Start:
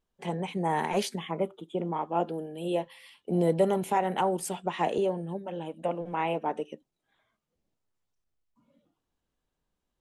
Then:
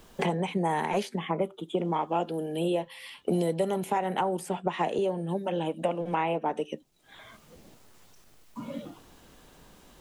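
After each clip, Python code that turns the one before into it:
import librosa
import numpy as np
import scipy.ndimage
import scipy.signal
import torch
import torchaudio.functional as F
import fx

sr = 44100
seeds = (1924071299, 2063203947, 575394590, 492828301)

y = fx.band_squash(x, sr, depth_pct=100)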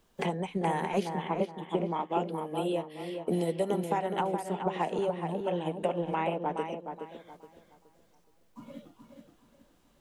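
y = fx.echo_filtered(x, sr, ms=421, feedback_pct=44, hz=2700.0, wet_db=-4.5)
y = fx.upward_expand(y, sr, threshold_db=-47.0, expansion=1.5)
y = F.gain(torch.from_numpy(y), -1.5).numpy()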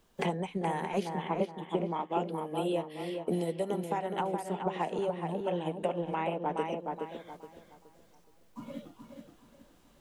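y = fx.rider(x, sr, range_db=5, speed_s=0.5)
y = F.gain(torch.from_numpy(y), -1.5).numpy()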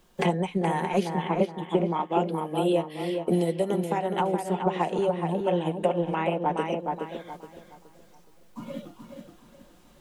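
y = x + 0.33 * np.pad(x, (int(5.6 * sr / 1000.0), 0))[:len(x)]
y = F.gain(torch.from_numpy(y), 5.5).numpy()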